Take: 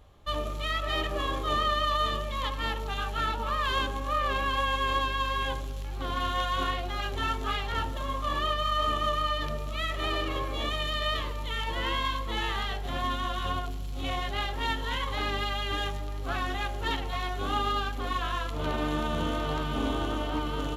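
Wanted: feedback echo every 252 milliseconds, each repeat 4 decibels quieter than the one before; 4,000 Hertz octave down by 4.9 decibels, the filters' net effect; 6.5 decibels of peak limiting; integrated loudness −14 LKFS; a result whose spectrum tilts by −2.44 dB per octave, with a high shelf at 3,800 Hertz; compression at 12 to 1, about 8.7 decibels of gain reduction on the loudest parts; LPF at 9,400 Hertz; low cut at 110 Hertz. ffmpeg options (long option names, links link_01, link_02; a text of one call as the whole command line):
ffmpeg -i in.wav -af "highpass=110,lowpass=9400,highshelf=frequency=3800:gain=-4,equalizer=frequency=4000:width_type=o:gain=-4.5,acompressor=threshold=-34dB:ratio=12,alimiter=level_in=7dB:limit=-24dB:level=0:latency=1,volume=-7dB,aecho=1:1:252|504|756|1008|1260|1512|1764|2016|2268:0.631|0.398|0.25|0.158|0.0994|0.0626|0.0394|0.0249|0.0157,volume=23.5dB" out.wav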